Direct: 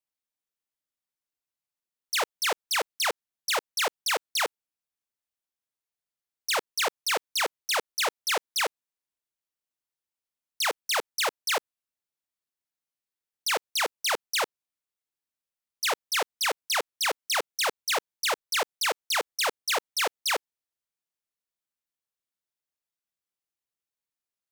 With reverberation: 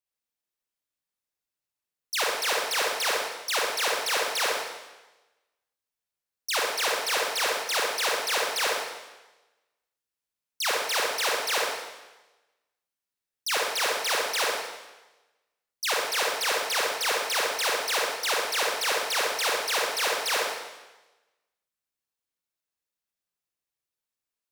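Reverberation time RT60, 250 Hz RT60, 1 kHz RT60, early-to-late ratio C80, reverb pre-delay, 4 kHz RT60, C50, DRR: 1.1 s, 1.1 s, 1.1 s, 3.5 dB, 39 ms, 1.1 s, −1.0 dB, −3.0 dB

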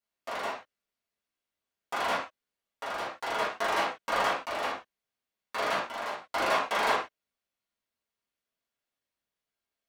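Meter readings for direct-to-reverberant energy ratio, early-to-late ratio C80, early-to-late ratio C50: −9.0 dB, 10.0 dB, 4.5 dB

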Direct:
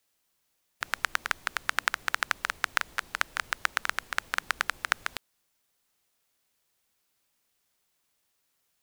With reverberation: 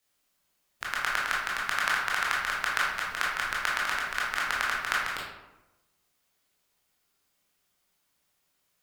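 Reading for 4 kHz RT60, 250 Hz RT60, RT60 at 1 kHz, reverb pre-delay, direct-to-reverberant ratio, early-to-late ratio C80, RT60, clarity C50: 0.55 s, 1.1 s, 0.95 s, 17 ms, −5.0 dB, 4.0 dB, 1.0 s, 0.5 dB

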